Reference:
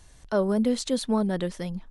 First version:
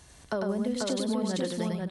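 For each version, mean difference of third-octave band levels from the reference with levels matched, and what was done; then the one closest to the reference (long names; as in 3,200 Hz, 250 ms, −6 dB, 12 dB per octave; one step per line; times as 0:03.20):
8.0 dB: high-pass filter 71 Hz 12 dB per octave
downward compressor, threshold −31 dBFS, peak gain reduction 12 dB
multi-tap delay 99/489/571 ms −4/−3/−11 dB
level +2.5 dB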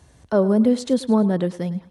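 3.5 dB: high-pass filter 68 Hz 24 dB per octave
tilt shelving filter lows +5 dB, about 1,200 Hz
on a send: feedback echo with a high-pass in the loop 106 ms, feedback 37%, high-pass 380 Hz, level −15 dB
on the sum: level +2.5 dB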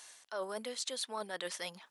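10.0 dB: high-pass filter 650 Hz 12 dB per octave
tilt shelving filter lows −4 dB, about 1,100 Hz
reversed playback
downward compressor 6 to 1, threshold −40 dBFS, peak gain reduction 14 dB
reversed playback
level +3.5 dB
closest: second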